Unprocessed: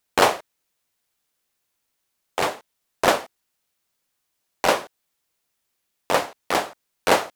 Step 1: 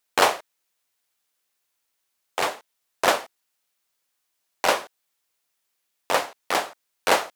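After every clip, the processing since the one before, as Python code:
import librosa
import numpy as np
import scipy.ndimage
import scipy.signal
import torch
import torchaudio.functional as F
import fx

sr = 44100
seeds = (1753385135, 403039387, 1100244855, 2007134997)

y = fx.low_shelf(x, sr, hz=340.0, db=-10.0)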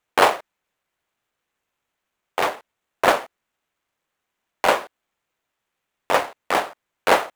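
y = scipy.signal.medfilt(x, 9)
y = y * 10.0 ** (4.0 / 20.0)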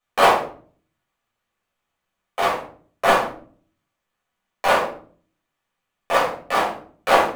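y = fx.room_shoebox(x, sr, seeds[0], volume_m3=420.0, walls='furnished', distance_m=6.0)
y = y * 10.0 ** (-8.5 / 20.0)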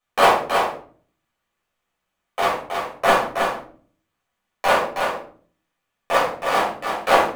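y = x + 10.0 ** (-5.5 / 20.0) * np.pad(x, (int(320 * sr / 1000.0), 0))[:len(x)]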